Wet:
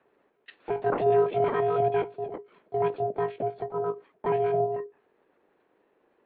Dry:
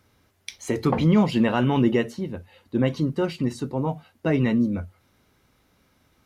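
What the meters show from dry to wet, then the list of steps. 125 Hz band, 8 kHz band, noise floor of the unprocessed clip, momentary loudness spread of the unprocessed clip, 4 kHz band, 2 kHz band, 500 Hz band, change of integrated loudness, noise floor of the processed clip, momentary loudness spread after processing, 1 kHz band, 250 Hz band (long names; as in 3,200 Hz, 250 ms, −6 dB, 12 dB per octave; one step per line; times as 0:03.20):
−13.5 dB, can't be measured, −65 dBFS, 15 LU, below −15 dB, −7.5 dB, +2.5 dB, −4.0 dB, −70 dBFS, 13 LU, +3.0 dB, −18.0 dB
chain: one-pitch LPC vocoder at 8 kHz 290 Hz
ring modulation 410 Hz
three-way crossover with the lows and the highs turned down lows −16 dB, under 190 Hz, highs −15 dB, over 2,300 Hz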